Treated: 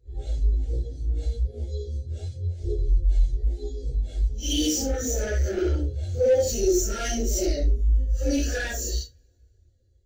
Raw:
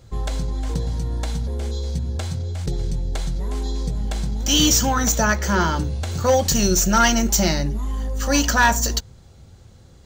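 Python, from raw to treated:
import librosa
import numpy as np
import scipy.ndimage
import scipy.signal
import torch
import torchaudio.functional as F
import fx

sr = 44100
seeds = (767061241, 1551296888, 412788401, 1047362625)

y = fx.phase_scramble(x, sr, seeds[0], window_ms=200)
y = fx.dynamic_eq(y, sr, hz=420.0, q=2.1, threshold_db=-37.0, ratio=4.0, max_db=6)
y = np.clip(y, -10.0 ** (-18.0 / 20.0), 10.0 ** (-18.0 / 20.0))
y = fx.fixed_phaser(y, sr, hz=420.0, stages=4)
y = fx.rev_double_slope(y, sr, seeds[1], early_s=0.34, late_s=3.3, knee_db=-16, drr_db=17.0)
y = fx.spectral_expand(y, sr, expansion=1.5)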